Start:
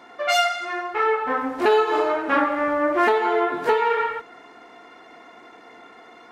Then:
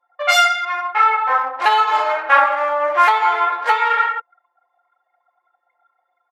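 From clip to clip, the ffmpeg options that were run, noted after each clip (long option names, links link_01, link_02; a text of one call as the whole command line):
ffmpeg -i in.wav -af "anlmdn=25.1,highpass=frequency=690:width=0.5412,highpass=frequency=690:width=1.3066,aecho=1:1:3.7:0.6,volume=6.5dB" out.wav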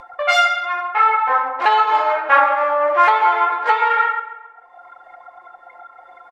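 ffmpeg -i in.wav -filter_complex "[0:a]acompressor=mode=upward:threshold=-21dB:ratio=2.5,aemphasis=mode=reproduction:type=bsi,asplit=2[link_01][link_02];[link_02]adelay=135,lowpass=frequency=3100:poles=1,volume=-12.5dB,asplit=2[link_03][link_04];[link_04]adelay=135,lowpass=frequency=3100:poles=1,volume=0.48,asplit=2[link_05][link_06];[link_06]adelay=135,lowpass=frequency=3100:poles=1,volume=0.48,asplit=2[link_07][link_08];[link_08]adelay=135,lowpass=frequency=3100:poles=1,volume=0.48,asplit=2[link_09][link_10];[link_10]adelay=135,lowpass=frequency=3100:poles=1,volume=0.48[link_11];[link_01][link_03][link_05][link_07][link_09][link_11]amix=inputs=6:normalize=0" out.wav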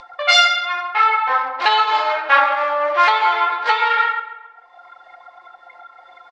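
ffmpeg -i in.wav -af "lowpass=frequency=4400:width_type=q:width=2,crystalizer=i=4:c=0,volume=-3.5dB" out.wav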